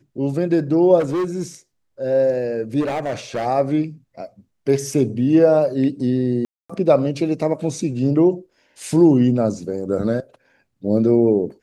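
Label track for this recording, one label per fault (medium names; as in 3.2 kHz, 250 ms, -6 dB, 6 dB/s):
0.990000	1.420000	clipped -18 dBFS
2.800000	3.470000	clipped -19.5 dBFS
6.450000	6.700000	dropout 245 ms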